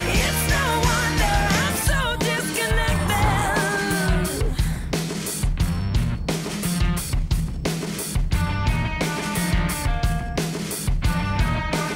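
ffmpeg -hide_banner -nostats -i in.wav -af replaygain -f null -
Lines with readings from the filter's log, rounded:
track_gain = +5.4 dB
track_peak = 0.242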